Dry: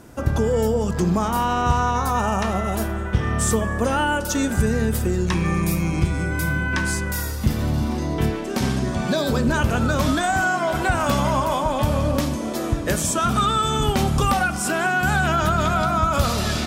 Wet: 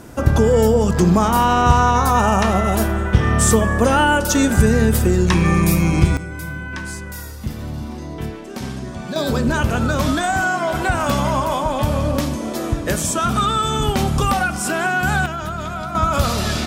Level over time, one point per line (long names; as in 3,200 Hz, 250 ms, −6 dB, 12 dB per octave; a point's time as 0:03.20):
+6 dB
from 0:06.17 −6 dB
from 0:09.16 +1.5 dB
from 0:15.26 −6.5 dB
from 0:15.95 +2 dB